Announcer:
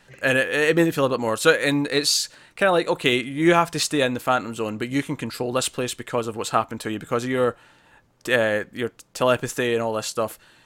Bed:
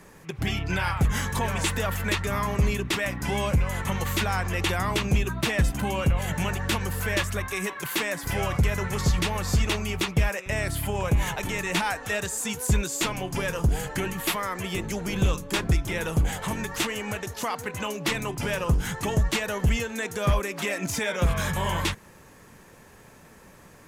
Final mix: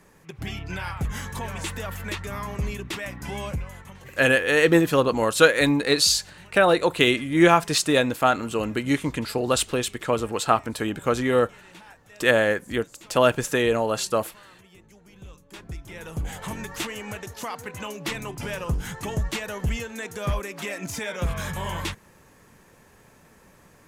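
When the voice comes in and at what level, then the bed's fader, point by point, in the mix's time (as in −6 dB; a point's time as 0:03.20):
3.95 s, +1.0 dB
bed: 0:03.49 −5.5 dB
0:04.13 −22.5 dB
0:15.19 −22.5 dB
0:16.43 −3.5 dB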